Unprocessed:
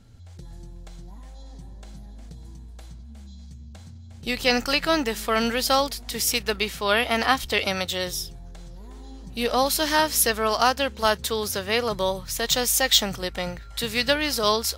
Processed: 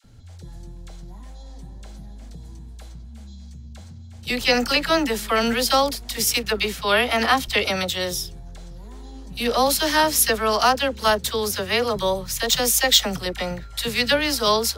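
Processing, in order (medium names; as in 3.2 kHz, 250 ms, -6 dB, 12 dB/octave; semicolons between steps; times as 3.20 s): phase dispersion lows, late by 44 ms, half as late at 780 Hz; trim +2.5 dB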